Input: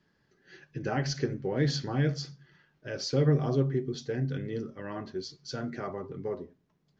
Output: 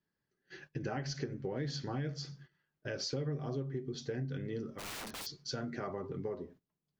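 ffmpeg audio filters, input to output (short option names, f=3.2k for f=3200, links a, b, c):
-filter_complex "[0:a]agate=range=-18dB:threshold=-55dB:ratio=16:detection=peak,asplit=3[a][b][c];[a]afade=t=out:st=4.78:d=0.02[d];[b]aeval=exprs='(mod(100*val(0)+1,2)-1)/100':c=same,afade=t=in:st=4.78:d=0.02,afade=t=out:st=5.25:d=0.02[e];[c]afade=t=in:st=5.25:d=0.02[f];[d][e][f]amix=inputs=3:normalize=0,acompressor=threshold=-37dB:ratio=5,volume=1.5dB"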